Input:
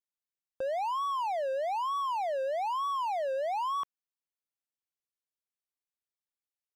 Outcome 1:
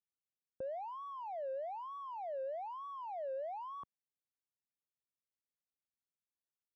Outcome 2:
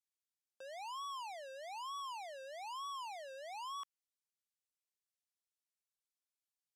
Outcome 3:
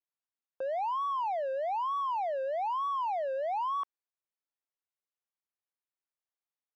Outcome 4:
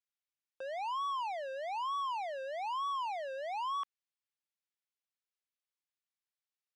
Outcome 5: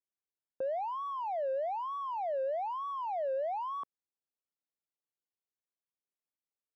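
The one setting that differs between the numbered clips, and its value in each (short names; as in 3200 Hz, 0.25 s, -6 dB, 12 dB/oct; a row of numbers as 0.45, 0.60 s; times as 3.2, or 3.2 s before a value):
band-pass, frequency: 130, 7100, 900, 2600, 350 Hz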